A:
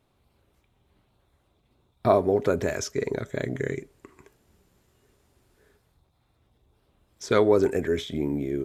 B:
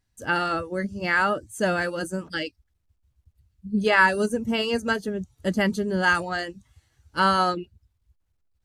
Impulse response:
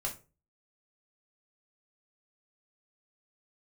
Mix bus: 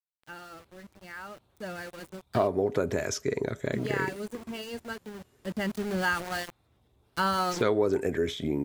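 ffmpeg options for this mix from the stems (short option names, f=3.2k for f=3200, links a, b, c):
-filter_complex "[0:a]highpass=56,adelay=300,volume=0dB[a];[1:a]lowshelf=f=130:g=3.5,aeval=exprs='val(0)*gte(abs(val(0)),0.0376)':c=same,volume=-4dB,afade=t=in:st=1.29:d=0.55:silence=0.446684,afade=t=in:st=5.36:d=0.69:silence=0.334965[b];[a][b]amix=inputs=2:normalize=0,acompressor=threshold=-25dB:ratio=2"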